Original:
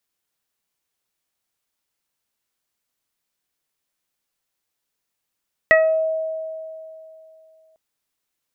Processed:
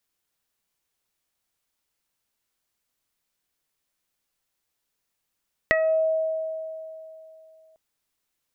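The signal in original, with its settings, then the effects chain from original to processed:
additive tone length 2.05 s, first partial 639 Hz, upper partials -10/4.5/-15.5 dB, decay 2.86 s, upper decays 0.45/0.26/0.44 s, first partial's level -11.5 dB
low shelf 69 Hz +6 dB; compressor 6:1, threshold -19 dBFS

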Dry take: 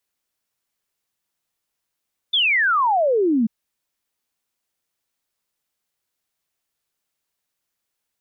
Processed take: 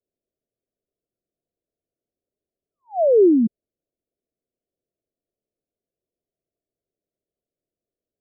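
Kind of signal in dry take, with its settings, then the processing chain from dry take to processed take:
log sweep 3600 Hz -> 210 Hz 1.14 s -15 dBFS
steep low-pass 700 Hz 96 dB/oct; bell 390 Hz +6.5 dB 0.82 oct

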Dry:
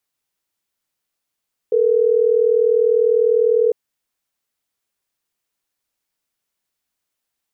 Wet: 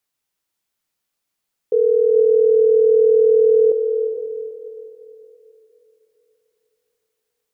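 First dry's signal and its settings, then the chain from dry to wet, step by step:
call progress tone ringback tone, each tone -15 dBFS
diffused feedback echo 0.456 s, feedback 42%, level -6.5 dB

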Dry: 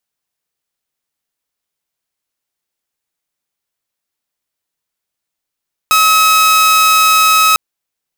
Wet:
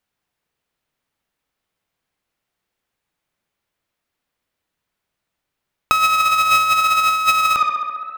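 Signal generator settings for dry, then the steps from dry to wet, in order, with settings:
tone saw 1280 Hz -4.5 dBFS 1.65 s
tone controls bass +4 dB, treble -10 dB; on a send: tape echo 65 ms, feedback 90%, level -11.5 dB, low-pass 3500 Hz; on the sum: negative-ratio compressor -14 dBFS, ratio -0.5

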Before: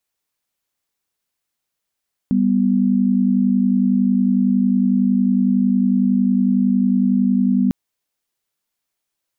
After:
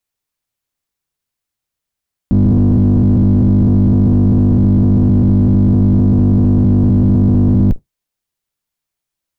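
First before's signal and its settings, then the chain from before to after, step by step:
chord G3/B3 sine, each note -16 dBFS 5.40 s
octaver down 1 oct, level 0 dB; low shelf 78 Hz +7.5 dB; sample leveller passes 1

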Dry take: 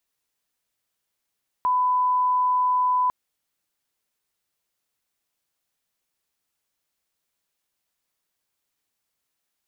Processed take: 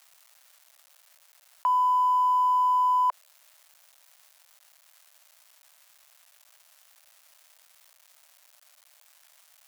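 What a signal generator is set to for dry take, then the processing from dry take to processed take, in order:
line-up tone -18 dBFS 1.45 s
G.711 law mismatch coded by A; elliptic high-pass 590 Hz, stop band 60 dB; fast leveller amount 50%

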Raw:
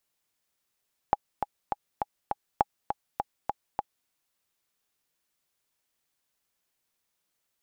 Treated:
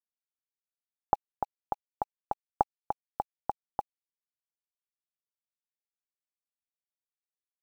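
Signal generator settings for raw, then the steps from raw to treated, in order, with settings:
metronome 203 bpm, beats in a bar 5, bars 2, 825 Hz, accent 6.5 dB -8 dBFS
Wiener smoothing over 9 samples; LPF 1400 Hz 24 dB/oct; bit-crush 10-bit

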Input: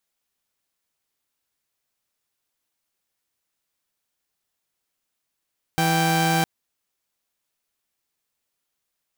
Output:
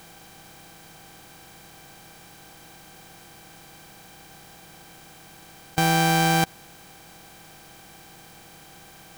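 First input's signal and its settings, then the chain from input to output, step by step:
chord E3/G5 saw, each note -18.5 dBFS 0.66 s
per-bin compression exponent 0.4

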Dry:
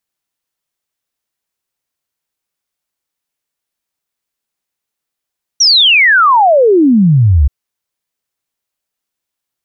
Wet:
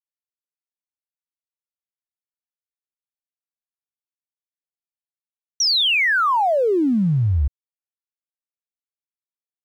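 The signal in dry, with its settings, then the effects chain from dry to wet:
log sweep 5900 Hz -> 64 Hz 1.88 s -4.5 dBFS
limiter -14.5 dBFS; crossover distortion -46 dBFS

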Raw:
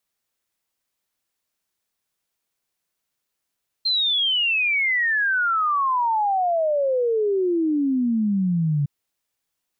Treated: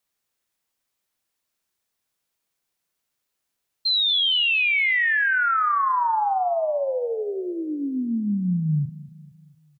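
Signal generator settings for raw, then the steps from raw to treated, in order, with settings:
log sweep 4200 Hz -> 140 Hz 5.01 s -18 dBFS
dynamic EQ 350 Hz, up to -8 dB, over -37 dBFS, Q 1.2; doubler 39 ms -12 dB; feedback echo 0.231 s, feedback 50%, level -18 dB

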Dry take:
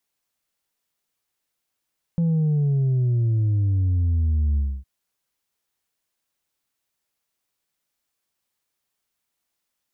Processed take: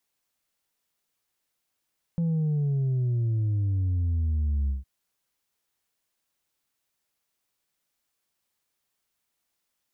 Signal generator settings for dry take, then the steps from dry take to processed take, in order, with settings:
sub drop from 170 Hz, over 2.66 s, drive 2.5 dB, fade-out 0.27 s, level -18 dB
limiter -23 dBFS

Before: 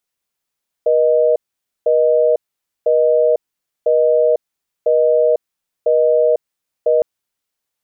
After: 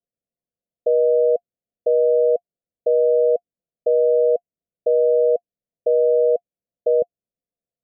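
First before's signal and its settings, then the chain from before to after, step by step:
call progress tone busy tone, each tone -13 dBFS 6.16 s
rippled Chebyshev low-pass 720 Hz, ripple 6 dB

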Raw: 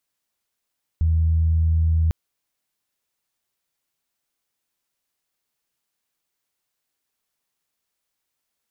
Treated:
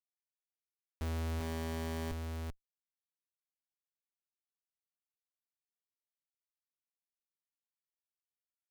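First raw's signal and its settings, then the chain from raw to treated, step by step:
steady additive tone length 1.10 s, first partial 81 Hz, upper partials -18.5 dB, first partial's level -15.5 dB
resonator 130 Hz, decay 0.19 s, harmonics all, mix 70%; Schmitt trigger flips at -30 dBFS; on a send: echo 0.39 s -4 dB

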